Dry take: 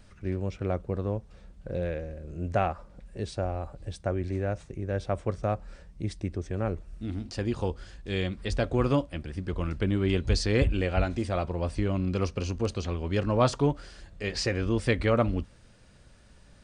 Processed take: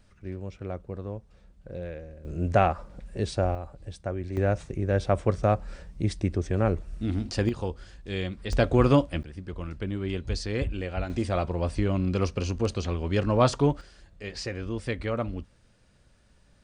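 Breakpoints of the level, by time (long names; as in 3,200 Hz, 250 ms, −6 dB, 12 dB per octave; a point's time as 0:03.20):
−5.5 dB
from 0:02.25 +5 dB
from 0:03.55 −2.5 dB
from 0:04.37 +5.5 dB
from 0:07.49 −1.5 dB
from 0:08.53 +5 dB
from 0:09.23 −5 dB
from 0:11.10 +2 dB
from 0:13.81 −5.5 dB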